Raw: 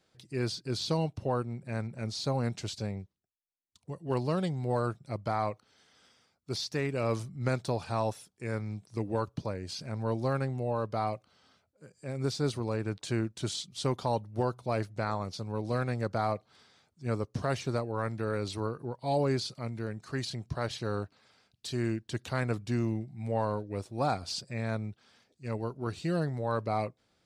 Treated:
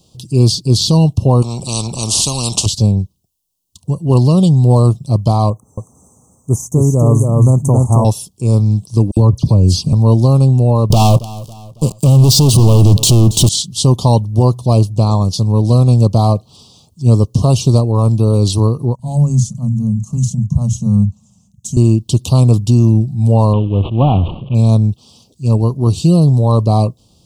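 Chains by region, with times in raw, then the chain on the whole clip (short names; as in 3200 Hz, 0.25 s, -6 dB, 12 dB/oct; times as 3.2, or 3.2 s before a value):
1.42–2.66 LPF 7700 Hz + spectral compressor 4:1
5.5–8.05 Chebyshev band-stop 1400–6400 Hz, order 5 + echo 0.273 s -3.5 dB
9.11–9.93 low shelf 310 Hz +9 dB + dispersion lows, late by 57 ms, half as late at 2800 Hz
10.9–13.49 sample leveller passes 5 + feedback echo 0.276 s, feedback 43%, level -23.5 dB
18.95–21.77 EQ curve 120 Hz 0 dB, 210 Hz +8 dB, 320 Hz -25 dB, 630 Hz -13 dB, 2000 Hz -14 dB, 4600 Hz -25 dB, 6500 Hz +1 dB, 10000 Hz -10 dB + bands offset in time highs, lows 40 ms, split 150 Hz
23.53–24.55 CVSD 16 kbps + sustainer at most 80 dB/s
whole clip: elliptic band-stop 1100–2800 Hz, stop band 60 dB; tone controls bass +12 dB, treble +10 dB; maximiser +15.5 dB; gain -1 dB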